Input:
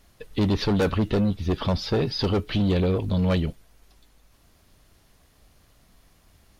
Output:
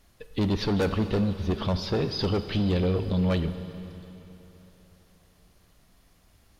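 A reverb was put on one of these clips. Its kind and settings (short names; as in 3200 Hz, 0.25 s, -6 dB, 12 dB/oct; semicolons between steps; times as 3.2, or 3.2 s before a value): Schroeder reverb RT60 3.5 s, combs from 33 ms, DRR 10 dB; gain -3 dB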